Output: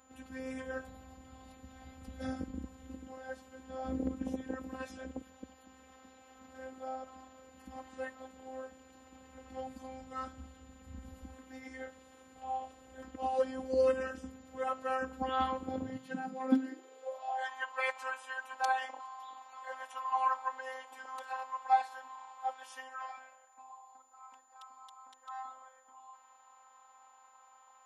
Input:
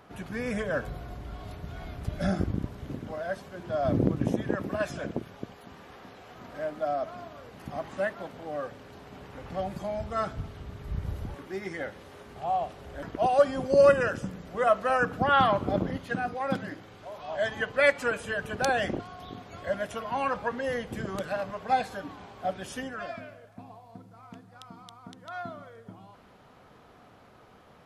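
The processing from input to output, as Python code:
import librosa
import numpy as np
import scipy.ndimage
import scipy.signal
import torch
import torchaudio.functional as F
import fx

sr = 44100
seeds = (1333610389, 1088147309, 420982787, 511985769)

y = x + 10.0 ** (-58.0 / 20.0) * np.sin(2.0 * np.pi * 7000.0 * np.arange(len(x)) / sr)
y = fx.robotise(y, sr, hz=261.0)
y = fx.filter_sweep_highpass(y, sr, from_hz=71.0, to_hz=930.0, start_s=15.61, end_s=17.49, q=6.8)
y = y * librosa.db_to_amplitude(-8.5)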